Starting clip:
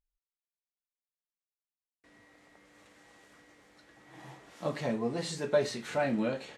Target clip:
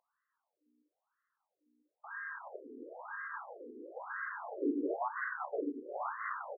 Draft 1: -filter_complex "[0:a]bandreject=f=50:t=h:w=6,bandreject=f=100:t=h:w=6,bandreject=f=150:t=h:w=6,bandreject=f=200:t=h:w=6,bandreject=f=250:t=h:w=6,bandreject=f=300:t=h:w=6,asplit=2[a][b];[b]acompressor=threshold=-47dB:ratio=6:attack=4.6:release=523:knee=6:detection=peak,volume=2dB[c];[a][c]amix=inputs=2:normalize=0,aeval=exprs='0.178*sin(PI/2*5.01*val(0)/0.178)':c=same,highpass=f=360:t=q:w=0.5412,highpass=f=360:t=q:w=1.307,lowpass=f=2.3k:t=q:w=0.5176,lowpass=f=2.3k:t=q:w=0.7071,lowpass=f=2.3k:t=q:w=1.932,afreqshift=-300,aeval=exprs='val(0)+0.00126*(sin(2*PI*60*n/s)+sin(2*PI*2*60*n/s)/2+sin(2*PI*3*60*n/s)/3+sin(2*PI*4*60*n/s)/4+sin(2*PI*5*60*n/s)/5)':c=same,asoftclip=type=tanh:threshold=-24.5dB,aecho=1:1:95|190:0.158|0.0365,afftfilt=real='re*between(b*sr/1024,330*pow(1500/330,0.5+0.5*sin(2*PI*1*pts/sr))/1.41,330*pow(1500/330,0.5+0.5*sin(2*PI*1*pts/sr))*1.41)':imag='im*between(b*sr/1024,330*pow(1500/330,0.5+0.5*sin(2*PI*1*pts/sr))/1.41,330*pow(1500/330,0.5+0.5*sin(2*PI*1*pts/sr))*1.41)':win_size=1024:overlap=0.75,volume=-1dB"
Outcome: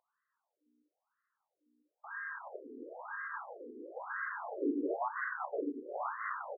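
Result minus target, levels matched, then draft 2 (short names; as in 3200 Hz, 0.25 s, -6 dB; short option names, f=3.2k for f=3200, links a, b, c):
compressor: peak gain reduction -6.5 dB
-filter_complex "[0:a]bandreject=f=50:t=h:w=6,bandreject=f=100:t=h:w=6,bandreject=f=150:t=h:w=6,bandreject=f=200:t=h:w=6,bandreject=f=250:t=h:w=6,bandreject=f=300:t=h:w=6,asplit=2[a][b];[b]acompressor=threshold=-55dB:ratio=6:attack=4.6:release=523:knee=6:detection=peak,volume=2dB[c];[a][c]amix=inputs=2:normalize=0,aeval=exprs='0.178*sin(PI/2*5.01*val(0)/0.178)':c=same,highpass=f=360:t=q:w=0.5412,highpass=f=360:t=q:w=1.307,lowpass=f=2.3k:t=q:w=0.5176,lowpass=f=2.3k:t=q:w=0.7071,lowpass=f=2.3k:t=q:w=1.932,afreqshift=-300,aeval=exprs='val(0)+0.00126*(sin(2*PI*60*n/s)+sin(2*PI*2*60*n/s)/2+sin(2*PI*3*60*n/s)/3+sin(2*PI*4*60*n/s)/4+sin(2*PI*5*60*n/s)/5)':c=same,asoftclip=type=tanh:threshold=-24.5dB,aecho=1:1:95|190:0.158|0.0365,afftfilt=real='re*between(b*sr/1024,330*pow(1500/330,0.5+0.5*sin(2*PI*1*pts/sr))/1.41,330*pow(1500/330,0.5+0.5*sin(2*PI*1*pts/sr))*1.41)':imag='im*between(b*sr/1024,330*pow(1500/330,0.5+0.5*sin(2*PI*1*pts/sr))/1.41,330*pow(1500/330,0.5+0.5*sin(2*PI*1*pts/sr))*1.41)':win_size=1024:overlap=0.75,volume=-1dB"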